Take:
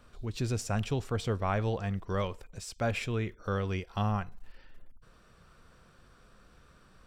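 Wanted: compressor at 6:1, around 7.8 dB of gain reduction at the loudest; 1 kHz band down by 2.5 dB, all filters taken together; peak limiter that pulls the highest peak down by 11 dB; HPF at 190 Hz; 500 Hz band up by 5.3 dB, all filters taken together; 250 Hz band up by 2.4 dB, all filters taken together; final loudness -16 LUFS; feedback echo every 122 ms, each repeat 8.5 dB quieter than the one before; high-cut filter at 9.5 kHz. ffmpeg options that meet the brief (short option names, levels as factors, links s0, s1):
-af "highpass=190,lowpass=9500,equalizer=f=250:t=o:g=4,equalizer=f=500:t=o:g=7,equalizer=f=1000:t=o:g=-7,acompressor=threshold=0.0251:ratio=6,alimiter=level_in=2.24:limit=0.0631:level=0:latency=1,volume=0.447,aecho=1:1:122|244|366|488:0.376|0.143|0.0543|0.0206,volume=18.8"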